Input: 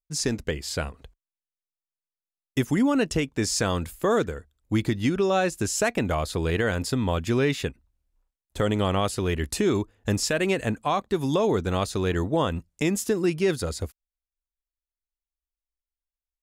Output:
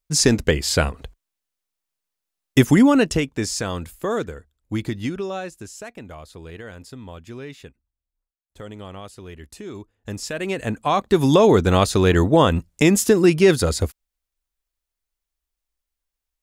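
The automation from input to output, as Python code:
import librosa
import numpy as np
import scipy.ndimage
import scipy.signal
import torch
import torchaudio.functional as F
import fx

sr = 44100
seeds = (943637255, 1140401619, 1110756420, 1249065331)

y = fx.gain(x, sr, db=fx.line((2.69, 10.0), (3.64, -1.5), (5.01, -1.5), (5.8, -13.0), (9.63, -13.0), (10.54, -1.0), (11.18, 9.0)))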